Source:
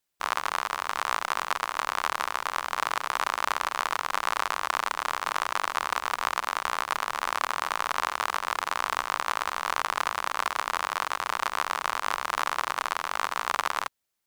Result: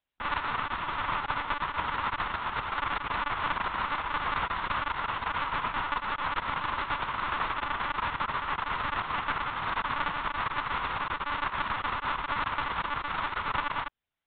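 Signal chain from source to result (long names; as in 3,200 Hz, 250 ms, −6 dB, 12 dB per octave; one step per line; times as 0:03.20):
one-pitch LPC vocoder at 8 kHz 290 Hz
level −1.5 dB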